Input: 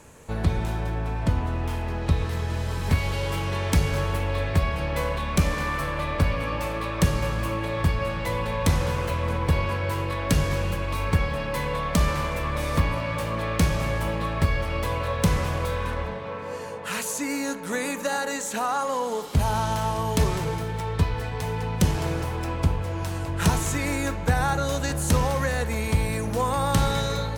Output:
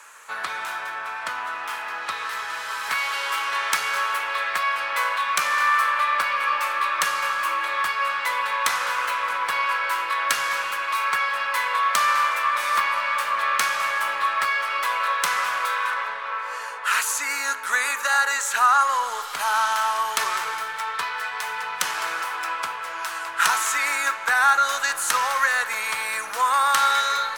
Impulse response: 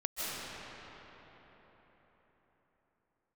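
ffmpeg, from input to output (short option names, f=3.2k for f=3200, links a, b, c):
-filter_complex "[0:a]highpass=f=1.3k:t=q:w=2.7,aeval=exprs='0.376*(cos(1*acos(clip(val(0)/0.376,-1,1)))-cos(1*PI/2))+0.00596*(cos(2*acos(clip(val(0)/0.376,-1,1)))-cos(2*PI/2))':c=same,asplit=2[a][b];[1:a]atrim=start_sample=2205[c];[b][c]afir=irnorm=-1:irlink=0,volume=-26dB[d];[a][d]amix=inputs=2:normalize=0,volume=4.5dB"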